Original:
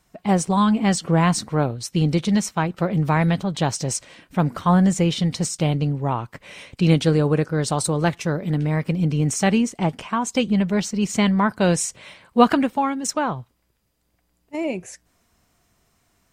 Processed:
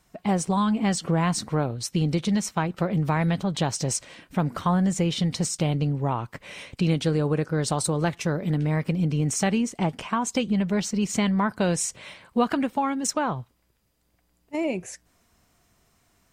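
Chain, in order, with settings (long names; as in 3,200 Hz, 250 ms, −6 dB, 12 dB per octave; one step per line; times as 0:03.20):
downward compressor 2.5 to 1, threshold −22 dBFS, peak gain reduction 9.5 dB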